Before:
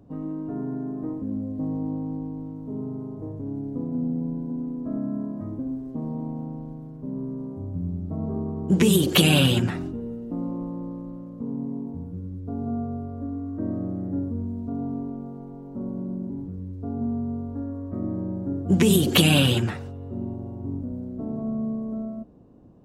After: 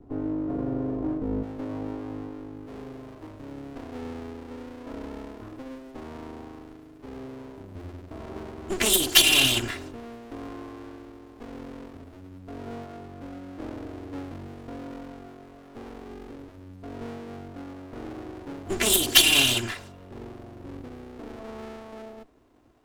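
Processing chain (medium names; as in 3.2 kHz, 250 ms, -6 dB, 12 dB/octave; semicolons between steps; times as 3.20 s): comb filter that takes the minimum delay 2.9 ms; tilt shelf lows +3.5 dB, about 1.2 kHz, from 1.42 s lows -4 dB, from 2.66 s lows -8.5 dB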